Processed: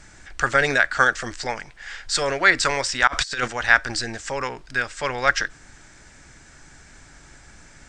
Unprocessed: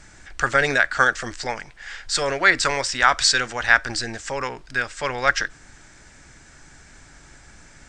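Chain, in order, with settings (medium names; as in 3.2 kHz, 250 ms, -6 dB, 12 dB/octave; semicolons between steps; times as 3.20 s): 3.07–3.48 s: compressor with a negative ratio -25 dBFS, ratio -0.5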